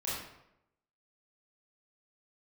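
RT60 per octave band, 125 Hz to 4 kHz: 0.90, 0.85, 0.85, 0.80, 0.70, 0.55 seconds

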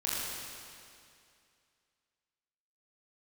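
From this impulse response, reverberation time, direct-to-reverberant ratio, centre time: 2.4 s, −8.0 dB, 164 ms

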